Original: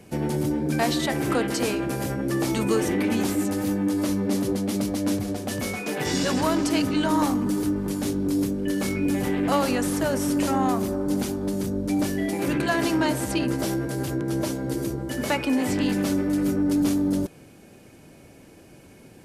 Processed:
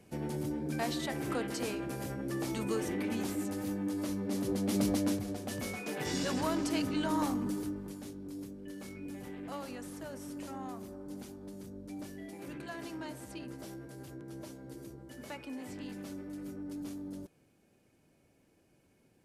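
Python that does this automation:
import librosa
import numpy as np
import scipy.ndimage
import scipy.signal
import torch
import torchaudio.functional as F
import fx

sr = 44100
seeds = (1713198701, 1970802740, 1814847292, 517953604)

y = fx.gain(x, sr, db=fx.line((4.28, -11.0), (4.91, -2.5), (5.2, -9.5), (7.45, -9.5), (8.13, -19.5)))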